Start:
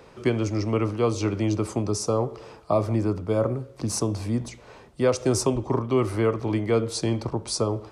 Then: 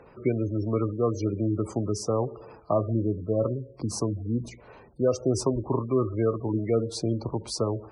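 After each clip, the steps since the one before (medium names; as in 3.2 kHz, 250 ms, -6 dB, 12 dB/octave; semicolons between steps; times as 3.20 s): spectral gate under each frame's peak -20 dB strong; treble shelf 8.9 kHz -9.5 dB; trim -2 dB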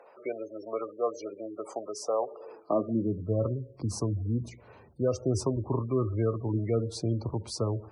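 high-pass sweep 620 Hz -> 82 Hz, 2.30–3.39 s; trim -4.5 dB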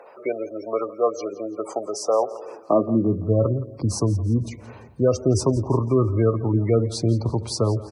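feedback delay 170 ms, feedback 46%, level -18 dB; trim +8.5 dB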